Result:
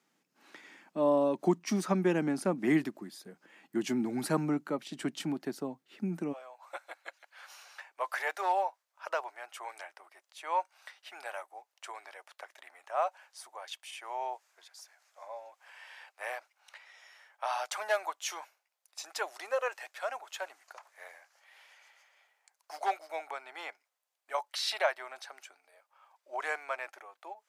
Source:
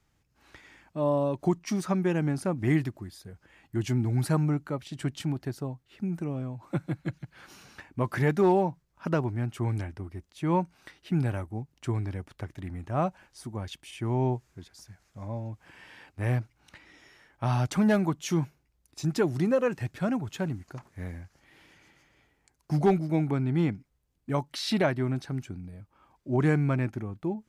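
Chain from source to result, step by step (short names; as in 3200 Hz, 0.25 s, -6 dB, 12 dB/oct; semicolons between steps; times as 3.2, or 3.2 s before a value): steep high-pass 190 Hz 36 dB/oct, from 6.32 s 590 Hz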